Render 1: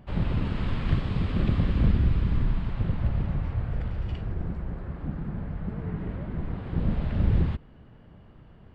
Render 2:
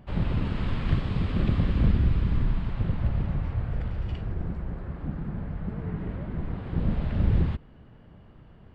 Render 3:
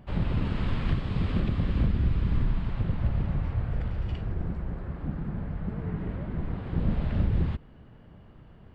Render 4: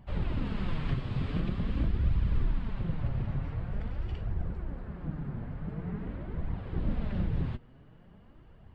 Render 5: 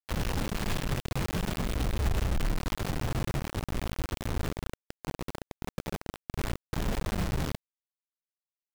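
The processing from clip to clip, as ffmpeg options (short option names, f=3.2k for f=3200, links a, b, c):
-af anull
-af "alimiter=limit=-15.5dB:level=0:latency=1:release=360"
-af "flanger=delay=0.9:depth=7.6:regen=42:speed=0.46:shape=triangular"
-af "acrusher=bits=4:mix=0:aa=0.000001,volume=-1.5dB"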